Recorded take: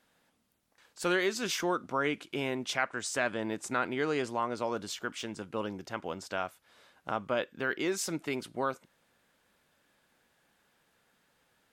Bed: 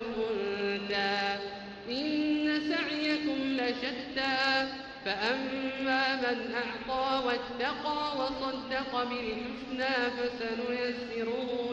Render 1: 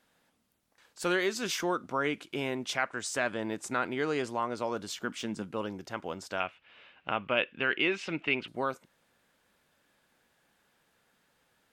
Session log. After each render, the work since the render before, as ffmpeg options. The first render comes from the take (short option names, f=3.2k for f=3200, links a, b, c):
-filter_complex "[0:a]asettb=1/sr,asplit=3[a][b][c];[a]atrim=end=4.924[d];[b]atrim=start=4.92:end=5.54,asetpts=PTS-STARTPTS,afade=t=in:d=0.004:c=qsin,afade=t=out:st=0.616:d=0.004:c=qsin,equalizer=f=210:w=1.5:g=7[e];[c]atrim=start=5.536[f];[d][e]acrossfade=d=0.004:c1=hsin:c2=qsin[g];[g][f]acrossfade=d=0.004:c1=qsin:c2=hsin,asettb=1/sr,asplit=3[h][i][j];[h]atrim=end=6.404[k];[i]atrim=start=6.4:end=8.48,asetpts=PTS-STARTPTS,afade=t=in:d=0.004:c=qsin,afade=t=out:st=2.076:d=0.004:c=qsin,lowpass=f=2.7k:t=q:w=5[l];[j]atrim=start=8.476[m];[k][l]acrossfade=d=0.004:c1=hsin:c2=qsin[n];[n][m]acrossfade=d=0.004:c1=qsin:c2=hsin"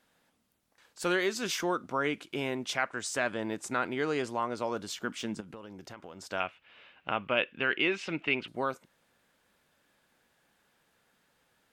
-filter_complex "[0:a]asettb=1/sr,asplit=3[a][b][c];[a]atrim=end=5.404[d];[b]atrim=start=5.4:end=6.26,asetpts=PTS-STARTPTS,afade=t=in:d=0.004:c=qsin,afade=t=out:st=0.856:d=0.004:c=qsin,acompressor=threshold=-41dB:ratio=8:attack=3.2:release=140:knee=1:detection=peak[e];[c]atrim=start=6.256[f];[d][e]acrossfade=d=0.004:c1=hsin:c2=qsin[g];[g][f]acrossfade=d=0.004:c1=qsin:c2=hsin"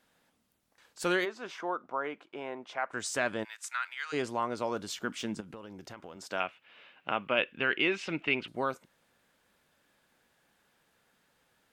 -filter_complex "[0:a]asplit=3[a][b][c];[a]afade=t=out:st=1.24:d=0.02[d];[b]bandpass=f=830:t=q:w=1.1,afade=t=in:st=1.24:d=0.02,afade=t=out:st=2.89:d=0.02[e];[c]afade=t=in:st=2.89:d=0.02[f];[d][e][f]amix=inputs=3:normalize=0,asplit=3[g][h][i];[g]afade=t=out:st=3.43:d=0.02[j];[h]highpass=f=1.3k:w=0.5412,highpass=f=1.3k:w=1.3066,afade=t=in:st=3.43:d=0.02,afade=t=out:st=4.12:d=0.02[k];[i]afade=t=in:st=4.12:d=0.02[l];[j][k][l]amix=inputs=3:normalize=0,asettb=1/sr,asplit=3[m][n][o];[m]atrim=end=6.164[p];[n]atrim=start=6.16:end=7.39,asetpts=PTS-STARTPTS,afade=t=in:d=0.004:c=qsin,afade=t=out:st=1.226:d=0.004:c=qsin,highpass=140[q];[o]atrim=start=7.386[r];[p][q]acrossfade=d=0.004:c1=hsin:c2=qsin[s];[s][r]acrossfade=d=0.004:c1=qsin:c2=hsin"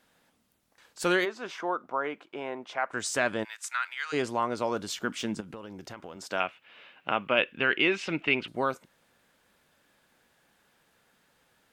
-af "volume=3.5dB"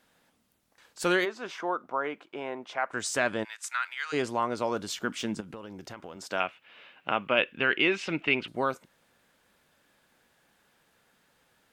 -filter_complex "[0:a]asettb=1/sr,asplit=3[a][b][c];[a]atrim=end=3.234[d];[b]atrim=start=3.23:end=3.63,asetpts=PTS-STARTPTS,afade=t=in:d=0.004:c=qsin,afade=t=out:st=0.396:d=0.004:c=qsin,lowpass=12k[e];[c]atrim=start=3.626[f];[d][e]acrossfade=d=0.004:c1=hsin:c2=qsin[g];[g][f]acrossfade=d=0.004:c1=qsin:c2=hsin"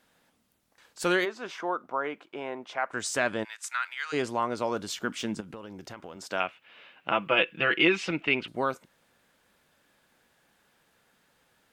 -filter_complex "[0:a]asettb=1/sr,asplit=3[a][b][c];[a]atrim=end=7.114[d];[b]atrim=start=7.11:end=8.11,asetpts=PTS-STARTPTS,afade=t=in:d=0.004:c=qsin,afade=t=out:st=0.996:d=0.004:c=qsin,aecho=1:1:6:0.79,atrim=end_sample=44100[e];[c]atrim=start=8.106[f];[d][e]acrossfade=d=0.004:c1=hsin:c2=qsin[g];[g][f]acrossfade=d=0.004:c1=qsin:c2=hsin"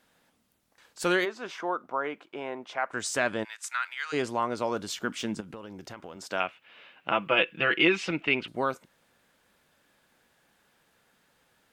-af anull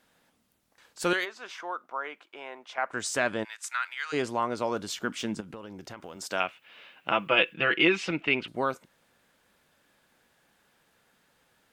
-filter_complex "[0:a]asettb=1/sr,asplit=3[a][b][c];[a]atrim=end=1.134[d];[b]atrim=start=1.13:end=2.78,asetpts=PTS-STARTPTS,afade=t=in:d=0.004:c=qsin,afade=t=out:st=1.646:d=0.004:c=qsin,highpass=f=1.1k:p=1[e];[c]atrim=start=2.776[f];[d][e]acrossfade=d=0.004:c1=hsin:c2=qsin[g];[g][f]acrossfade=d=0.004:c1=qsin:c2=hsin,asettb=1/sr,asplit=3[h][i][j];[h]atrim=end=6.014[k];[i]atrim=start=6.01:end=7.54,asetpts=PTS-STARTPTS,afade=t=in:d=0.004:c=qsin,afade=t=out:st=1.526:d=0.004:c=qsin,highshelf=f=5.4k:g=8.5[l];[j]atrim=start=7.536[m];[k][l]acrossfade=d=0.004:c1=hsin:c2=qsin[n];[n][m]acrossfade=d=0.004:c1=qsin:c2=hsin"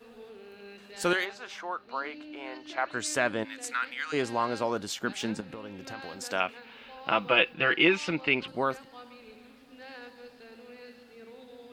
-filter_complex "[1:a]volume=-16dB[a];[0:a][a]amix=inputs=2:normalize=0"